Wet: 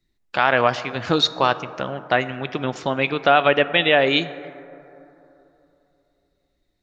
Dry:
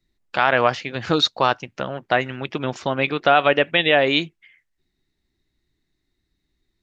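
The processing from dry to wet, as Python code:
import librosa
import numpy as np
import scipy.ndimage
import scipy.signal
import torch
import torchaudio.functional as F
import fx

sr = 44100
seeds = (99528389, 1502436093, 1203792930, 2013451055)

y = fx.rev_plate(x, sr, seeds[0], rt60_s=3.1, hf_ratio=0.3, predelay_ms=0, drr_db=14.0)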